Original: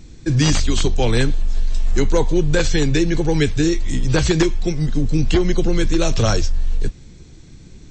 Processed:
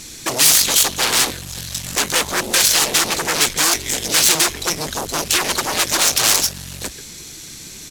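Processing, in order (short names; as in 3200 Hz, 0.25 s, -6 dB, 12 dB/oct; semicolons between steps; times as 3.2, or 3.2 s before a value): CVSD 64 kbps; speakerphone echo 0.14 s, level -18 dB; in parallel at -6.5 dB: sine folder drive 18 dB, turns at -4 dBFS; on the sum: tilt +4 dB/oct; gain -7 dB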